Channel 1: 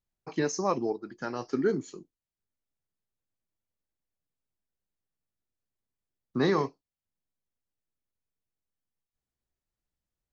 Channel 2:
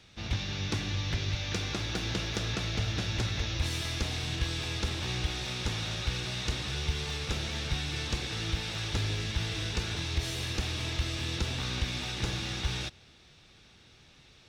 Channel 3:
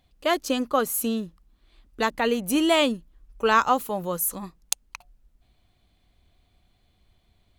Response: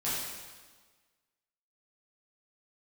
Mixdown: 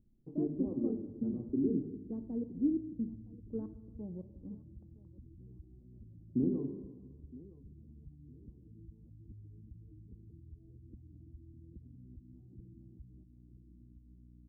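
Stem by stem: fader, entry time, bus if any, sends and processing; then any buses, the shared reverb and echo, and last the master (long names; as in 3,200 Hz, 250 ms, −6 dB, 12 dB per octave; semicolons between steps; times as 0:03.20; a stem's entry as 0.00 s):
+2.0 dB, 0.00 s, send −9 dB, echo send −18.5 dB, reverb reduction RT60 1 s; brickwall limiter −19.5 dBFS, peak gain reduction 4.5 dB
−13.0 dB, 0.35 s, no send, echo send −15.5 dB, gate on every frequency bin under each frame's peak −15 dB strong; mains hum 60 Hz, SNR 12 dB
−4.0 dB, 0.10 s, send −17 dB, echo send −21 dB, gate pattern "..xxx.xx" 135 BPM −60 dB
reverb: on, RT60 1.4 s, pre-delay 5 ms
echo: repeating echo 965 ms, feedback 25%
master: upward compression, threshold −40 dBFS; transistor ladder low-pass 330 Hz, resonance 45%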